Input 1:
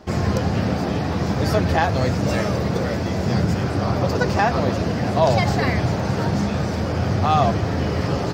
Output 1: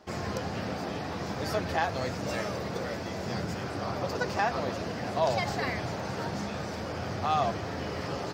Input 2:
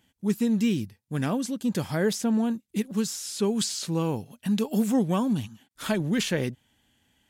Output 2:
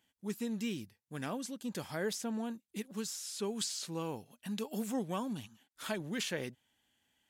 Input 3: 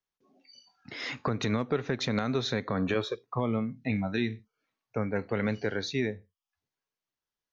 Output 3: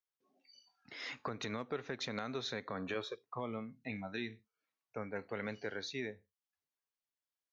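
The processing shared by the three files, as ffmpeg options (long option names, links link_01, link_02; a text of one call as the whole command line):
ffmpeg -i in.wav -af "lowshelf=frequency=270:gain=-10.5,volume=-7.5dB" out.wav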